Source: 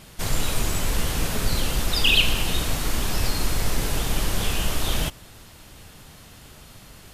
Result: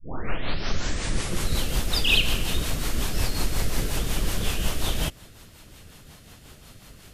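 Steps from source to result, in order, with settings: tape start-up on the opening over 1.63 s; rotary cabinet horn 5.5 Hz

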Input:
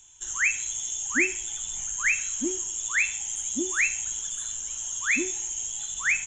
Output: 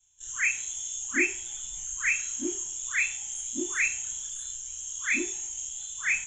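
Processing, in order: short-time spectra conjugated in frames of 67 ms; three bands expanded up and down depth 40%

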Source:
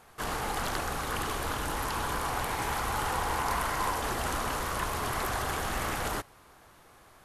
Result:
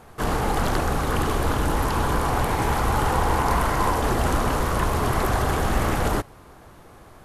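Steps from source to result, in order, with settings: tilt shelf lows +5.5 dB, about 770 Hz; trim +8.5 dB

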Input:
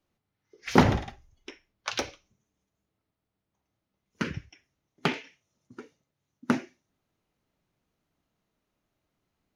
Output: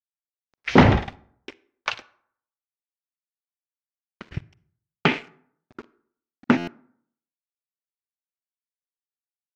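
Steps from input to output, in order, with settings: dynamic bell 2.5 kHz, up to +4 dB, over -47 dBFS, Q 1.2; 1.94–4.32 s: compression 3:1, threshold -49 dBFS, peak gain reduction 18.5 dB; waveshaping leveller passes 2; word length cut 8-bit, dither none; distance through air 160 m; reverberation RT60 0.60 s, pre-delay 37 ms, DRR 20 dB; buffer glitch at 6.57 s, samples 512, times 8

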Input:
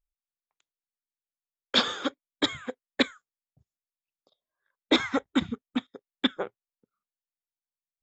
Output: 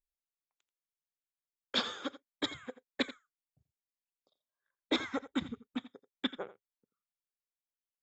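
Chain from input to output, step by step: delay 85 ms -15.5 dB; trim -9 dB

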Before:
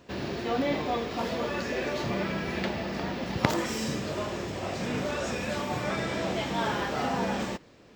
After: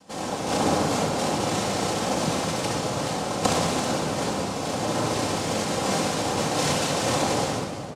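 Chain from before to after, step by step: multi-tap echo 69/332 ms -4/-11 dB; noise-vocoded speech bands 2; reverberation RT60 1.6 s, pre-delay 4 ms, DRR -1 dB

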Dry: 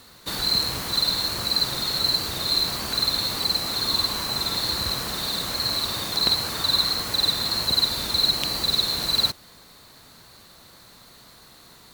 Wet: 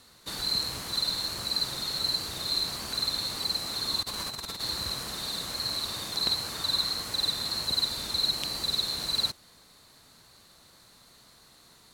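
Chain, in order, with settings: low-pass 11 kHz 12 dB/octave; treble shelf 6.4 kHz +6.5 dB; 4.02–4.62 s: compressor with a negative ratio -28 dBFS, ratio -0.5; trim -8 dB

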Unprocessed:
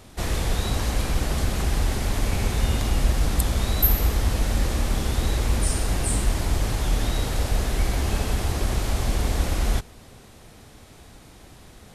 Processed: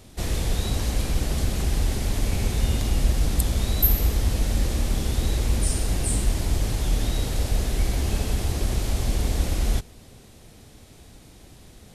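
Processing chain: peaking EQ 1.2 kHz -6.5 dB 1.8 oct

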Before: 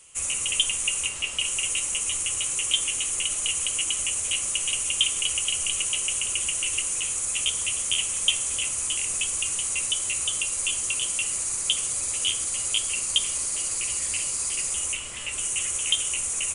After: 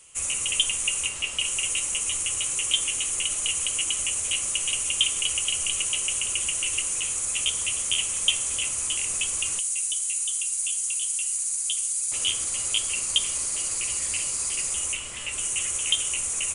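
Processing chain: 9.59–12.12 s: pre-emphasis filter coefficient 0.9

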